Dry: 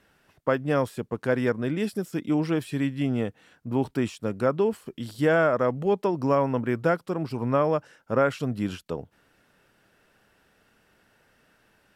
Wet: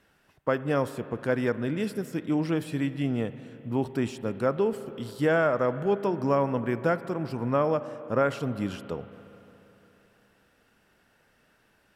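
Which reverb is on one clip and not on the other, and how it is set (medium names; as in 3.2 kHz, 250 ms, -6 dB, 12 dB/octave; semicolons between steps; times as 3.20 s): spring tank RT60 3.4 s, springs 35/50 ms, chirp 65 ms, DRR 13 dB; trim -2 dB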